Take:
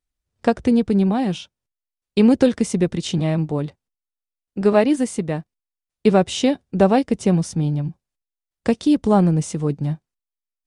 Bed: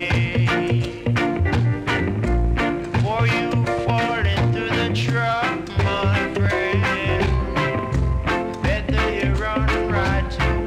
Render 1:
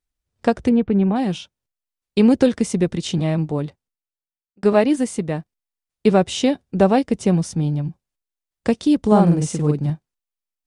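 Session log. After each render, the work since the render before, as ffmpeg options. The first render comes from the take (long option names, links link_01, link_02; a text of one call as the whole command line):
ffmpeg -i in.wav -filter_complex "[0:a]asettb=1/sr,asplit=3[link_01][link_02][link_03];[link_01]atrim=end=0.694[link_04];[link_02]atrim=start=0.69:end=1.16,asetpts=PTS-STARTPTS,afade=type=in:duration=0.004:curve=qsin,afade=type=out:start_time=0.466:duration=0.004:curve=qsin,lowpass=frequency=2900:width=0.5412,lowpass=frequency=2900:width=1.3066[link_05];[link_03]atrim=start=1.156[link_06];[link_04][link_05]acrossfade=duration=0.004:curve1=hsin:curve2=qsin[link_07];[link_07][link_06]acrossfade=duration=0.004:curve1=qsin:curve2=hsin,asettb=1/sr,asplit=3[link_08][link_09][link_10];[link_08]atrim=end=9.074[link_11];[link_09]atrim=start=9.07:end=9.9,asetpts=PTS-STARTPTS,afade=type=in:duration=0.004:curve=qsin,afade=type=out:start_time=0.826:duration=0.004:curve=qsin,asplit=2[link_12][link_13];[link_13]adelay=47,volume=-2.5dB[link_14];[link_12][link_14]amix=inputs=2:normalize=0,atrim=end_sample=36603[link_15];[link_10]atrim=start=9.896[link_16];[link_11][link_15]acrossfade=duration=0.004:curve1=hsin:curve2=qsin[link_17];[link_17][link_16]acrossfade=duration=0.004:curve1=qsin:curve2=hsin,asplit=2[link_18][link_19];[link_18]atrim=end=4.63,asetpts=PTS-STARTPTS,afade=type=out:start_time=3.59:duration=1.04[link_20];[link_19]atrim=start=4.63,asetpts=PTS-STARTPTS,afade=type=in:duration=0.004:curve=hsin[link_21];[link_20][link_21]concat=n=2:v=0:a=1" out.wav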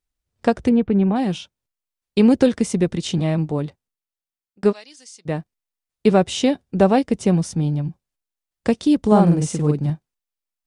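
ffmpeg -i in.wav -filter_complex "[0:a]asplit=3[link_01][link_02][link_03];[link_01]afade=type=out:start_time=4.71:duration=0.02[link_04];[link_02]bandpass=frequency=5200:width_type=q:width=3,afade=type=in:start_time=4.71:duration=0.02,afade=type=out:start_time=5.25:duration=0.02[link_05];[link_03]afade=type=in:start_time=5.25:duration=0.02[link_06];[link_04][link_05][link_06]amix=inputs=3:normalize=0" out.wav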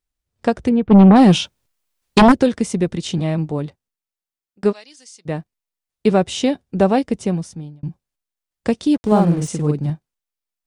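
ffmpeg -i in.wav -filter_complex "[0:a]asplit=3[link_01][link_02][link_03];[link_01]afade=type=out:start_time=0.9:duration=0.02[link_04];[link_02]aeval=exprs='0.596*sin(PI/2*2.82*val(0)/0.596)':channel_layout=same,afade=type=in:start_time=0.9:duration=0.02,afade=type=out:start_time=2.31:duration=0.02[link_05];[link_03]afade=type=in:start_time=2.31:duration=0.02[link_06];[link_04][link_05][link_06]amix=inputs=3:normalize=0,asettb=1/sr,asplit=3[link_07][link_08][link_09];[link_07]atrim=end=8.944[link_10];[link_08]atrim=start=8.94:end=9.48,asetpts=PTS-STARTPTS,afade=type=in:duration=0.004:curve=qsin,afade=type=out:start_time=0.536:duration=0.004:curve=qsin,aeval=exprs='sgn(val(0))*max(abs(val(0))-0.0158,0)':channel_layout=same[link_11];[link_09]atrim=start=9.476[link_12];[link_10][link_11]acrossfade=duration=0.004:curve1=hsin:curve2=qsin[link_13];[link_13][link_12]acrossfade=duration=0.004:curve1=qsin:curve2=hsin,asplit=2[link_14][link_15];[link_14]atrim=end=7.83,asetpts=PTS-STARTPTS,afade=type=out:start_time=7.08:duration=0.75[link_16];[link_15]atrim=start=7.83,asetpts=PTS-STARTPTS,afade=type=in:duration=0.004:curve=hsin[link_17];[link_16][link_17]concat=n=2:v=0:a=1" out.wav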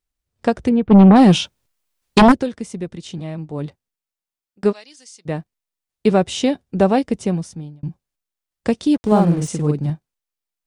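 ffmpeg -i in.wav -filter_complex "[0:a]asplit=3[link_01][link_02][link_03];[link_01]atrim=end=2.51,asetpts=PTS-STARTPTS,afade=type=out:start_time=2.31:duration=0.2:curve=qua:silence=0.375837[link_04];[link_02]atrim=start=2.51:end=3.44,asetpts=PTS-STARTPTS,volume=-8.5dB[link_05];[link_03]atrim=start=3.44,asetpts=PTS-STARTPTS,afade=type=in:duration=0.2:curve=qua:silence=0.375837[link_06];[link_04][link_05][link_06]concat=n=3:v=0:a=1" out.wav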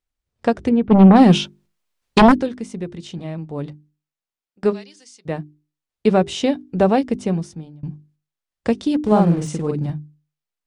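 ffmpeg -i in.wav -af "highshelf=frequency=7400:gain=-9,bandreject=frequency=50:width_type=h:width=6,bandreject=frequency=100:width_type=h:width=6,bandreject=frequency=150:width_type=h:width=6,bandreject=frequency=200:width_type=h:width=6,bandreject=frequency=250:width_type=h:width=6,bandreject=frequency=300:width_type=h:width=6,bandreject=frequency=350:width_type=h:width=6,bandreject=frequency=400:width_type=h:width=6" out.wav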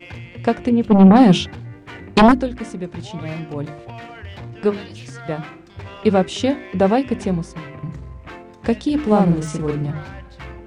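ffmpeg -i in.wav -i bed.wav -filter_complex "[1:a]volume=-15.5dB[link_01];[0:a][link_01]amix=inputs=2:normalize=0" out.wav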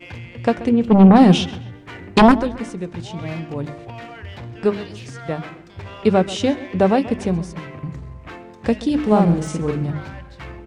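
ffmpeg -i in.wav -filter_complex "[0:a]asplit=2[link_01][link_02];[link_02]adelay=132,lowpass=frequency=4900:poles=1,volume=-16.5dB,asplit=2[link_03][link_04];[link_04]adelay=132,lowpass=frequency=4900:poles=1,volume=0.36,asplit=2[link_05][link_06];[link_06]adelay=132,lowpass=frequency=4900:poles=1,volume=0.36[link_07];[link_01][link_03][link_05][link_07]amix=inputs=4:normalize=0" out.wav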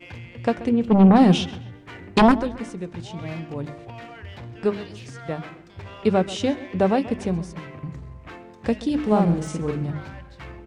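ffmpeg -i in.wav -af "volume=-4dB" out.wav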